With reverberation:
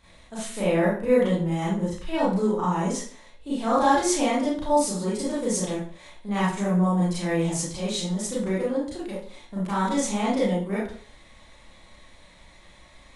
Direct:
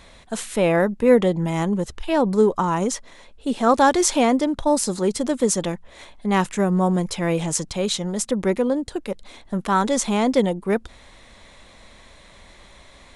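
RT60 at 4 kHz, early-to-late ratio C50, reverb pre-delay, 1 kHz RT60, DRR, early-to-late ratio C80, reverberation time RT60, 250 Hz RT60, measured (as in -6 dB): 0.40 s, 0.0 dB, 30 ms, 0.45 s, -9.0 dB, 6.5 dB, 0.45 s, 0.50 s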